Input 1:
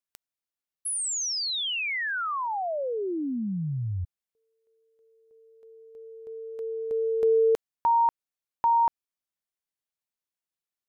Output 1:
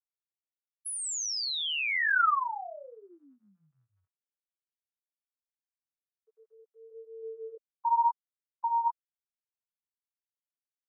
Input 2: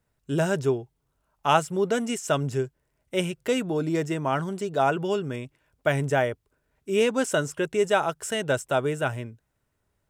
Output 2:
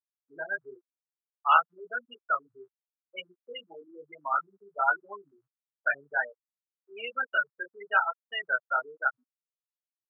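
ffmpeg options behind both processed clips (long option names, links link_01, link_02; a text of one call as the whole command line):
ffmpeg -i in.wav -af "flanger=delay=20:depth=5.5:speed=0.97,afftfilt=real='re*gte(hypot(re,im),0.1)':imag='im*gte(hypot(re,im),0.1)':win_size=1024:overlap=0.75,highpass=frequency=1300:width_type=q:width=3" out.wav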